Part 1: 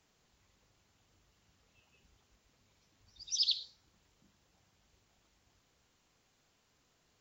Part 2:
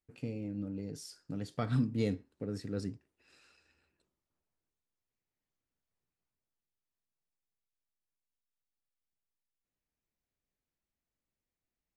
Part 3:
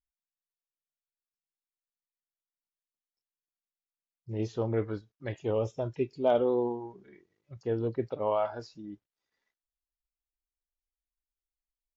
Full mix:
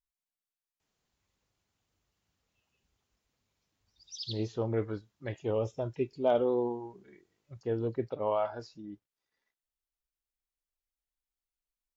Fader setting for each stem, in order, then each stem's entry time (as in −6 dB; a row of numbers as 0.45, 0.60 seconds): −9.5 dB, muted, −1.5 dB; 0.80 s, muted, 0.00 s